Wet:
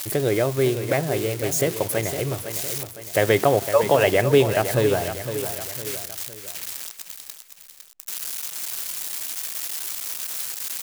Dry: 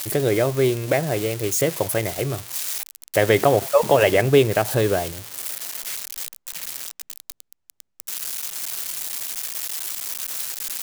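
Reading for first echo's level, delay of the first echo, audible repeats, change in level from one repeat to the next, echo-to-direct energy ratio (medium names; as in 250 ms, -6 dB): -10.0 dB, 509 ms, 3, -6.5 dB, -9.0 dB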